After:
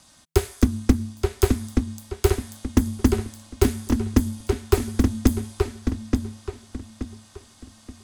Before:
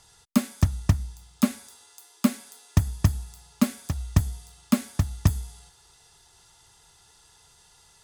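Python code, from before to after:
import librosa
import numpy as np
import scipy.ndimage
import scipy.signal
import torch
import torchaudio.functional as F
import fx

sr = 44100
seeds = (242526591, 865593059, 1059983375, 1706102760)

p1 = x * np.sin(2.0 * np.pi * 160.0 * np.arange(len(x)) / sr)
p2 = p1 + fx.echo_filtered(p1, sr, ms=877, feedback_pct=33, hz=4800.0, wet_db=-4.0, dry=0)
y = F.gain(torch.from_numpy(p2), 5.5).numpy()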